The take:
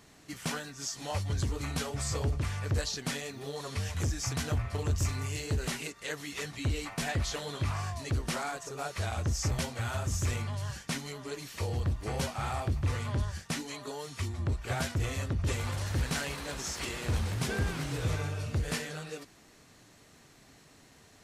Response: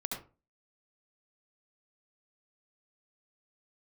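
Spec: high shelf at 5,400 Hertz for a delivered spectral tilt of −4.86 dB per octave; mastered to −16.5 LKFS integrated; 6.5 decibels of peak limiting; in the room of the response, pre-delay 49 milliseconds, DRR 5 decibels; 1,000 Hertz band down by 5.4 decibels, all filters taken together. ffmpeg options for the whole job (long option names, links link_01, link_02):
-filter_complex "[0:a]equalizer=frequency=1000:width_type=o:gain=-7.5,highshelf=frequency=5400:gain=-4.5,alimiter=level_in=3.5dB:limit=-24dB:level=0:latency=1,volume=-3.5dB,asplit=2[link_01][link_02];[1:a]atrim=start_sample=2205,adelay=49[link_03];[link_02][link_03]afir=irnorm=-1:irlink=0,volume=-7dB[link_04];[link_01][link_04]amix=inputs=2:normalize=0,volume=19.5dB"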